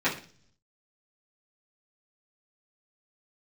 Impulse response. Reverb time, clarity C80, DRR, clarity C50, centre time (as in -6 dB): 0.45 s, 15.0 dB, -12.0 dB, 10.0 dB, 21 ms